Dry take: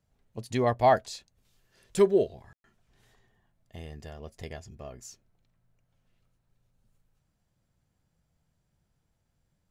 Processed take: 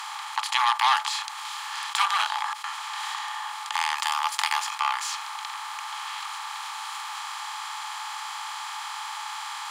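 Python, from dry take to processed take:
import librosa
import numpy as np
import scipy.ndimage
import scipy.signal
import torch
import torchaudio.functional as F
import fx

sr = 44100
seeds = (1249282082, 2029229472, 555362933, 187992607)

p1 = fx.bin_compress(x, sr, power=0.4)
p2 = fx.high_shelf(p1, sr, hz=8900.0, db=9.0, at=(3.98, 4.7))
p3 = fx.rider(p2, sr, range_db=5, speed_s=2.0)
p4 = p2 + (p3 * librosa.db_to_amplitude(2.0))
p5 = fx.cheby_harmonics(p4, sr, harmonics=(7,), levels_db=(-21,), full_scale_db=1.0)
p6 = scipy.signal.sosfilt(scipy.signal.cheby1(6, 9, 830.0, 'highpass', fs=sr, output='sos'), p5)
p7 = fx.env_flatten(p6, sr, amount_pct=50)
y = p7 * librosa.db_to_amplitude(1.5)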